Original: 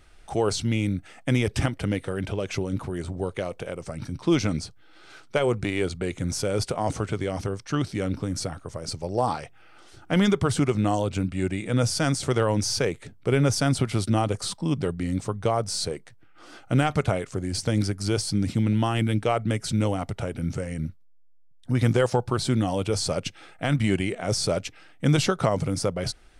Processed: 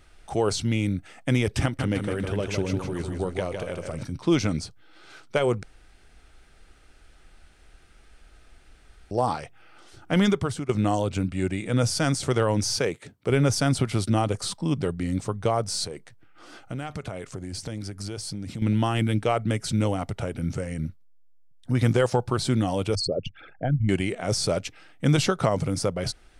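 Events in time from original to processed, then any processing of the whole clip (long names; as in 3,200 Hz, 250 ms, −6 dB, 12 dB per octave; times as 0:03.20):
0:01.63–0:04.03: repeating echo 157 ms, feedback 42%, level −5.5 dB
0:05.63–0:09.11: fill with room tone
0:10.28–0:10.69: fade out linear, to −15.5 dB
0:12.76–0:13.30: high-pass filter 140 Hz 6 dB per octave
0:15.84–0:18.62: downward compressor 4 to 1, threshold −31 dBFS
0:22.95–0:23.89: spectral envelope exaggerated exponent 3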